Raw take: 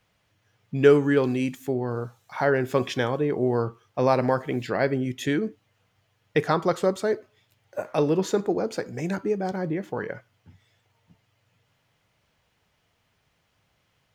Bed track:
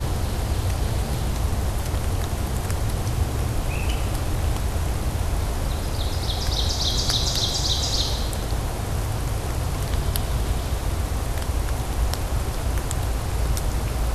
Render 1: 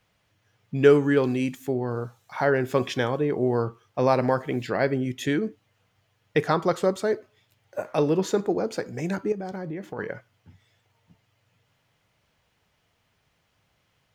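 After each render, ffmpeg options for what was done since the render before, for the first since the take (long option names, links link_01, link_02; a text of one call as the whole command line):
ffmpeg -i in.wav -filter_complex "[0:a]asettb=1/sr,asplit=3[link_01][link_02][link_03];[link_01]atrim=end=9.324[link_04];[link_02]atrim=start=9.32:end=9.99,asetpts=PTS-STARTPTS,afade=type=in:duration=0.004:curve=qsin,afade=type=out:start_time=0.666:duration=0.004:curve=qsin,acompressor=threshold=-31dB:ratio=3:attack=3.2:release=140:knee=1:detection=peak[link_05];[link_03]atrim=start=9.986[link_06];[link_04][link_05]acrossfade=duration=0.004:curve1=hsin:curve2=qsin[link_07];[link_07][link_06]acrossfade=duration=0.004:curve1=qsin:curve2=hsin" out.wav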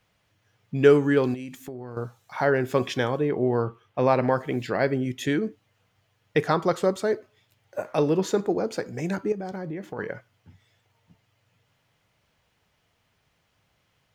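ffmpeg -i in.wav -filter_complex "[0:a]asettb=1/sr,asplit=3[link_01][link_02][link_03];[link_01]atrim=end=1.344[link_04];[link_02]atrim=start=1.34:end=1.97,asetpts=PTS-STARTPTS,afade=type=in:duration=0.004:curve=qsin,afade=type=out:start_time=0.626:duration=0.004:curve=qsin,acompressor=threshold=-33dB:ratio=6:attack=3.2:release=140:knee=1:detection=peak[link_05];[link_03]atrim=start=1.966[link_06];[link_04][link_05]acrossfade=duration=0.004:curve1=hsin:curve2=qsin[link_07];[link_07][link_06]acrossfade=duration=0.004:curve1=qsin:curve2=hsin,asettb=1/sr,asplit=3[link_08][link_09][link_10];[link_08]atrim=end=3.294[link_11];[link_09]atrim=start=3.29:end=4.36,asetpts=PTS-STARTPTS,afade=type=in:duration=0.004:curve=qsin,afade=type=out:start_time=1.066:duration=0.004:curve=qsin,highshelf=frequency=4000:width_type=q:width=1.5:gain=-6[link_12];[link_10]atrim=start=4.356[link_13];[link_11][link_12]acrossfade=duration=0.004:curve1=hsin:curve2=qsin[link_14];[link_14][link_13]acrossfade=duration=0.004:curve1=qsin:curve2=hsin" out.wav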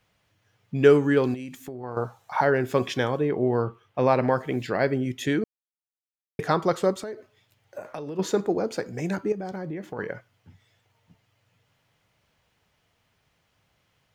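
ffmpeg -i in.wav -filter_complex "[0:a]asettb=1/sr,asplit=3[link_01][link_02][link_03];[link_01]atrim=end=1.834[link_04];[link_02]atrim=start=1.83:end=2.41,asetpts=PTS-STARTPTS,afade=type=in:duration=0.004:curve=qsin,afade=type=out:start_time=0.576:duration=0.004:curve=qsin,equalizer=frequency=840:width=0.99:gain=10.5[link_05];[link_03]atrim=start=2.406[link_06];[link_04][link_05]acrossfade=duration=0.004:curve1=hsin:curve2=qsin[link_07];[link_07][link_06]acrossfade=duration=0.004:curve1=qsin:curve2=hsin,asplit=3[link_08][link_09][link_10];[link_08]afade=type=out:start_time=6.94:duration=0.02[link_11];[link_09]acompressor=threshold=-31dB:ratio=10:attack=3.2:release=140:knee=1:detection=peak,afade=type=in:start_time=6.94:duration=0.02,afade=type=out:start_time=8.18:duration=0.02[link_12];[link_10]afade=type=in:start_time=8.18:duration=0.02[link_13];[link_11][link_12][link_13]amix=inputs=3:normalize=0,asplit=3[link_14][link_15][link_16];[link_14]atrim=end=5.44,asetpts=PTS-STARTPTS,afade=type=out:start_time=5.436:duration=0.004:curve=hsin[link_17];[link_15]atrim=start=5.44:end=6.39,asetpts=PTS-STARTPTS,volume=0[link_18];[link_16]atrim=start=6.39,asetpts=PTS-STARTPTS,afade=type=in:duration=0.004:curve=hsin[link_19];[link_17][link_18][link_19]concat=n=3:v=0:a=1" out.wav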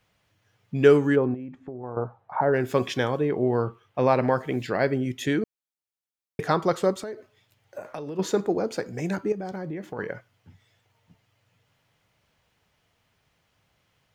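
ffmpeg -i in.wav -filter_complex "[0:a]asplit=3[link_01][link_02][link_03];[link_01]afade=type=out:start_time=1.15:duration=0.02[link_04];[link_02]lowpass=1100,afade=type=in:start_time=1.15:duration=0.02,afade=type=out:start_time=2.52:duration=0.02[link_05];[link_03]afade=type=in:start_time=2.52:duration=0.02[link_06];[link_04][link_05][link_06]amix=inputs=3:normalize=0" out.wav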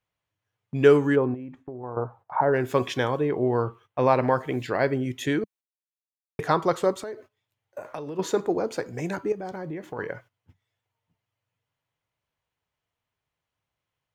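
ffmpeg -i in.wav -af "agate=range=-16dB:threshold=-48dB:ratio=16:detection=peak,equalizer=frequency=200:width_type=o:width=0.33:gain=-6,equalizer=frequency=1000:width_type=o:width=0.33:gain=4,equalizer=frequency=5000:width_type=o:width=0.33:gain=-3" out.wav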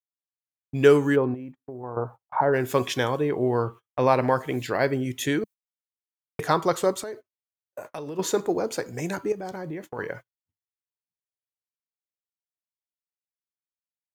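ffmpeg -i in.wav -af "agate=range=-32dB:threshold=-39dB:ratio=16:detection=peak,highshelf=frequency=5600:gain=11.5" out.wav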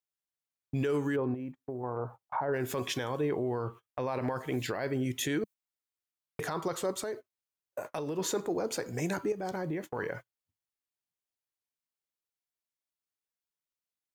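ffmpeg -i in.wav -af "acompressor=threshold=-29dB:ratio=2,alimiter=limit=-23dB:level=0:latency=1:release=18" out.wav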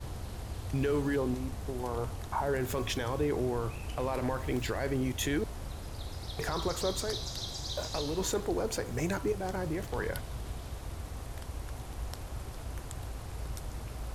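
ffmpeg -i in.wav -i bed.wav -filter_complex "[1:a]volume=-15.5dB[link_01];[0:a][link_01]amix=inputs=2:normalize=0" out.wav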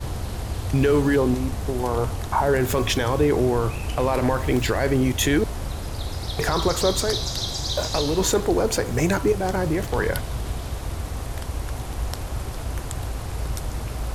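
ffmpeg -i in.wav -af "volume=11dB" out.wav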